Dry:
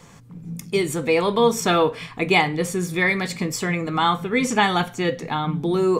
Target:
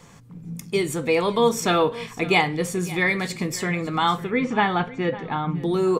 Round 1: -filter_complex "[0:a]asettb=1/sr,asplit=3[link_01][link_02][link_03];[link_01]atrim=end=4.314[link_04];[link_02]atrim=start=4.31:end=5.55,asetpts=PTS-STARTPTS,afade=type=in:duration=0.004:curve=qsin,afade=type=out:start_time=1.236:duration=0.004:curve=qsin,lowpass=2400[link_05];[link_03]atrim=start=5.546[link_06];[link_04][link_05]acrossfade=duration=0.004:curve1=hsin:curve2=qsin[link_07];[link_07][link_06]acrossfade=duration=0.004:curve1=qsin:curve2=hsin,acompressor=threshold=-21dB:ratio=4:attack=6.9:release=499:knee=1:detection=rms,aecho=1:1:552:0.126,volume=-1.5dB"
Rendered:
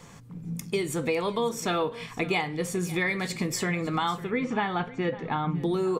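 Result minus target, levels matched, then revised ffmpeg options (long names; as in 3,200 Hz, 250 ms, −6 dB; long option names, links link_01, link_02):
downward compressor: peak gain reduction +10 dB
-filter_complex "[0:a]asettb=1/sr,asplit=3[link_01][link_02][link_03];[link_01]atrim=end=4.314[link_04];[link_02]atrim=start=4.31:end=5.55,asetpts=PTS-STARTPTS,afade=type=in:duration=0.004:curve=qsin,afade=type=out:start_time=1.236:duration=0.004:curve=qsin,lowpass=2400[link_05];[link_03]atrim=start=5.546[link_06];[link_04][link_05]acrossfade=duration=0.004:curve1=hsin:curve2=qsin[link_07];[link_07][link_06]acrossfade=duration=0.004:curve1=qsin:curve2=hsin,aecho=1:1:552:0.126,volume=-1.5dB"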